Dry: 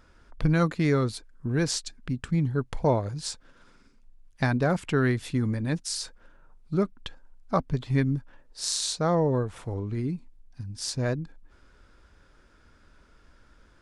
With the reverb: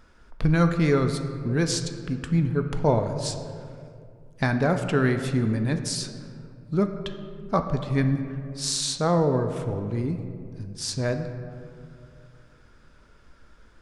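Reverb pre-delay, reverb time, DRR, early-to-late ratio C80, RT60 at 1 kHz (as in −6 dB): 4 ms, 2.4 s, 6.5 dB, 9.0 dB, 2.2 s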